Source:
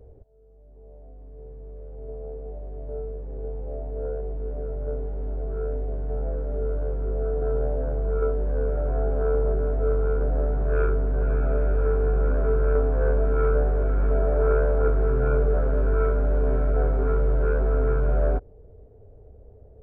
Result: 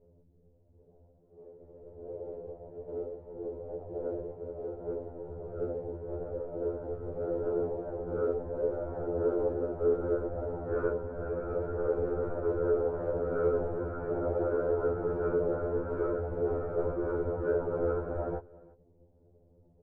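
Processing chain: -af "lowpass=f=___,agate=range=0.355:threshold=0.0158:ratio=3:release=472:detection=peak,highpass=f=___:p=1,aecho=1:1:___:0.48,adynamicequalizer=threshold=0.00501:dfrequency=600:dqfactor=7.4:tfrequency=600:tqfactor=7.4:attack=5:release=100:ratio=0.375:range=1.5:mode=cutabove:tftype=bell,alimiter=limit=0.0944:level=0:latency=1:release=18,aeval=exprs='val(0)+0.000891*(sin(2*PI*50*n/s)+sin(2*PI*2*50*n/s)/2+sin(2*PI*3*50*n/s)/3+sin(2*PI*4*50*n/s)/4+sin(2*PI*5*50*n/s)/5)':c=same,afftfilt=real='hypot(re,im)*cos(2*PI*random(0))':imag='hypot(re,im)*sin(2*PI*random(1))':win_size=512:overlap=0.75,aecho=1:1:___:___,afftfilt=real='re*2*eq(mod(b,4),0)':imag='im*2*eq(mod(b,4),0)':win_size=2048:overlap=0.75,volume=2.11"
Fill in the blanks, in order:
1000, 460, 2.2, 345, 0.0668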